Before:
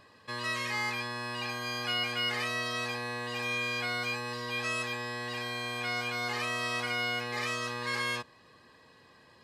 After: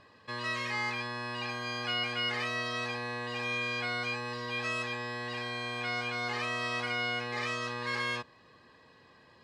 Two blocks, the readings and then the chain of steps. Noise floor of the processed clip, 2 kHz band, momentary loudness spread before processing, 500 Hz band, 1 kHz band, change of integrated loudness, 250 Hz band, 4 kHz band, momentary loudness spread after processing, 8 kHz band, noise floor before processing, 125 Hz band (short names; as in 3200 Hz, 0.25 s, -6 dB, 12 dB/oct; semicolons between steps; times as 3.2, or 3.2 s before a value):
-60 dBFS, -0.5 dB, 5 LU, 0.0 dB, -0.5 dB, -1.0 dB, 0.0 dB, -1.5 dB, 5 LU, -5.5 dB, -59 dBFS, 0.0 dB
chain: air absorption 69 m